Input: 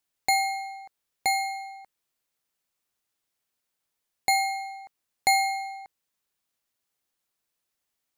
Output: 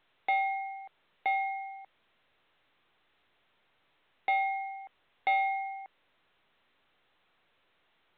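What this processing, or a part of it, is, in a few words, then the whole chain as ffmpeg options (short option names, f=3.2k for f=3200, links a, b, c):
telephone: -af "highpass=330,lowpass=3.1k,asoftclip=type=tanh:threshold=-19.5dB,volume=-1.5dB" -ar 8000 -c:a pcm_alaw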